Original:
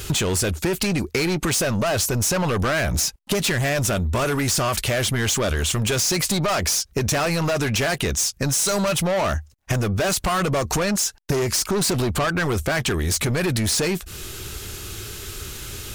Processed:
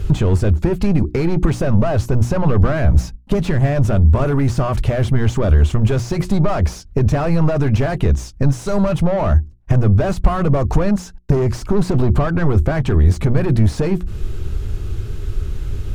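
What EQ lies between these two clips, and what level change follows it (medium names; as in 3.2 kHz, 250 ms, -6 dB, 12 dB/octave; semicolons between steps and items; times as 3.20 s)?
tilt EQ -4.5 dB/octave; hum notches 60/120/180/240/300/360 Hz; dynamic bell 920 Hz, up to +4 dB, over -32 dBFS, Q 0.87; -3.0 dB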